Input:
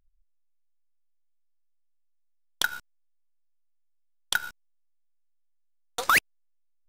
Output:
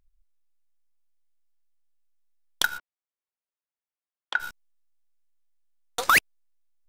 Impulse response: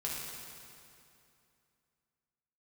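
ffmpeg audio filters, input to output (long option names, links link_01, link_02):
-filter_complex "[0:a]asplit=3[link_01][link_02][link_03];[link_01]afade=type=out:start_time=2.77:duration=0.02[link_04];[link_02]highpass=390,lowpass=2100,afade=type=in:start_time=2.77:duration=0.02,afade=type=out:start_time=4.39:duration=0.02[link_05];[link_03]afade=type=in:start_time=4.39:duration=0.02[link_06];[link_04][link_05][link_06]amix=inputs=3:normalize=0,volume=2dB"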